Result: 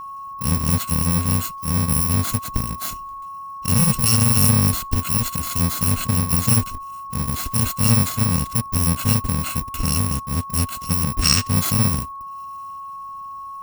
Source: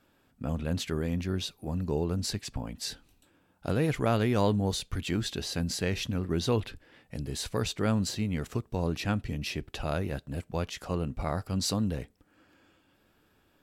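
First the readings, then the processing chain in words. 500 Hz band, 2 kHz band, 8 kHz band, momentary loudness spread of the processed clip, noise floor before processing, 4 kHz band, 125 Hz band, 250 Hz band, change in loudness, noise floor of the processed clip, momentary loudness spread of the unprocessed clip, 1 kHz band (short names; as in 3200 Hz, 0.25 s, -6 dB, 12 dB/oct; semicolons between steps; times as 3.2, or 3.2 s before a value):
-3.0 dB, +7.5 dB, +18.0 dB, 18 LU, -68 dBFS, +10.0 dB, +11.5 dB, +7.5 dB, +12.0 dB, -34 dBFS, 10 LU, +12.0 dB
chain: FFT order left unsorted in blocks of 128 samples; spectral gain 11.22–11.47, 1100–8700 Hz +12 dB; whine 1100 Hz -38 dBFS; resonant low shelf 360 Hz +6 dB, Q 1.5; gain +7.5 dB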